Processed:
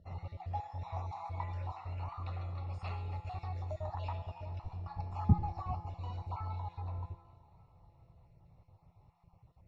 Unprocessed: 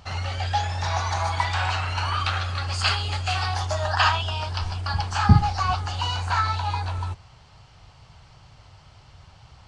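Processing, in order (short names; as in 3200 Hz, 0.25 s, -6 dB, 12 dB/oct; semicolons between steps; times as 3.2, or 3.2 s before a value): random spectral dropouts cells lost 25%; running mean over 28 samples; resonator 170 Hz, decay 1.2 s, mix 80%; on a send: thinning echo 0.404 s, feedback 51%, high-pass 150 Hz, level -19 dB; on the sum: gain +2.5 dB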